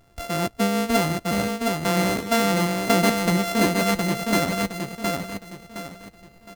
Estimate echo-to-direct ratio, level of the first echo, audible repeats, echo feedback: -3.0 dB, -3.5 dB, 4, 33%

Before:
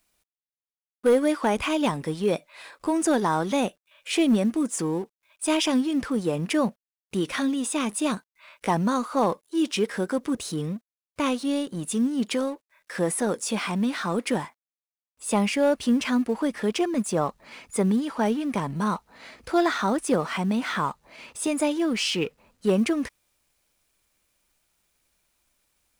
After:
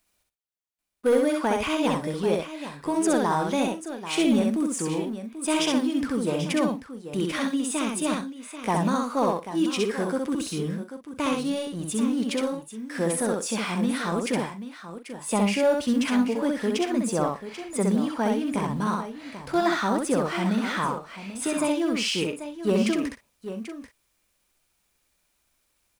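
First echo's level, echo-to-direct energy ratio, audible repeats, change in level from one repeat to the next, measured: -3.0 dB, -2.0 dB, 4, no regular repeats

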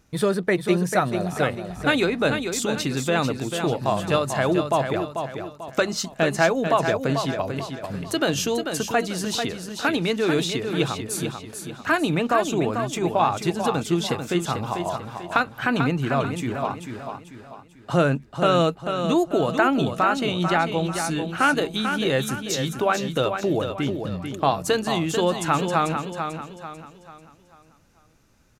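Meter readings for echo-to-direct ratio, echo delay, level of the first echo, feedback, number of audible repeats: -6.5 dB, 442 ms, -7.0 dB, 39%, 4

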